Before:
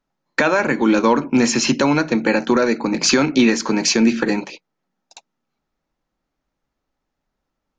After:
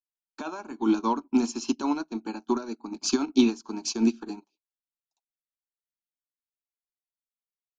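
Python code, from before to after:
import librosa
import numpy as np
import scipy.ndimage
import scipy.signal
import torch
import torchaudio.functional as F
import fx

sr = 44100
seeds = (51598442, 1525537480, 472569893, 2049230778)

y = fx.fixed_phaser(x, sr, hz=520.0, stages=6)
y = fx.upward_expand(y, sr, threshold_db=-37.0, expansion=2.5)
y = y * librosa.db_to_amplitude(-2.0)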